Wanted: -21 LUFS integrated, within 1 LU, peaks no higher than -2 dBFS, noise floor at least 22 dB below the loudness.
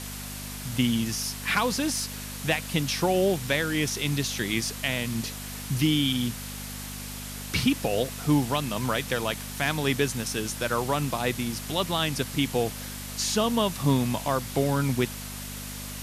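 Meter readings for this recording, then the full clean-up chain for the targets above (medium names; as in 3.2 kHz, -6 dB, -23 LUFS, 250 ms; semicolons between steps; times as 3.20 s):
hum 50 Hz; highest harmonic 250 Hz; hum level -38 dBFS; noise floor -37 dBFS; noise floor target -49 dBFS; loudness -27.0 LUFS; peak level -11.5 dBFS; loudness target -21.0 LUFS
-> de-hum 50 Hz, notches 5; noise print and reduce 12 dB; trim +6 dB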